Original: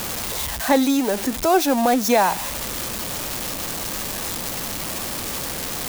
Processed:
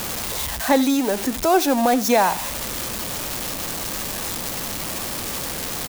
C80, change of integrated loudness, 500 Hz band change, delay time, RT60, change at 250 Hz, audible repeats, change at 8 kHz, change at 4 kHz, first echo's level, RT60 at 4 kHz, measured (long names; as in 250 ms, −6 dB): no reverb audible, 0.0 dB, 0.0 dB, 82 ms, no reverb audible, 0.0 dB, 1, 0.0 dB, 0.0 dB, −19.5 dB, no reverb audible